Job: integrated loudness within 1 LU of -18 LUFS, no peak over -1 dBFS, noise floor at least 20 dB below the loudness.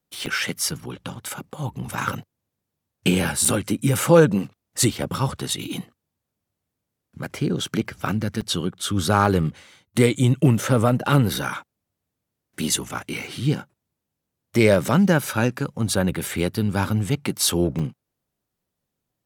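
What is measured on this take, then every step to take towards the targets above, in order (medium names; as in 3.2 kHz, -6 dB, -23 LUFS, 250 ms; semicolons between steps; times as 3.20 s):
dropouts 6; longest dropout 4.7 ms; loudness -22.0 LUFS; peak level -2.5 dBFS; loudness target -18.0 LUFS
-> interpolate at 0.26/1.15/3.45/8.41/12.89/17.79 s, 4.7 ms; trim +4 dB; peak limiter -1 dBFS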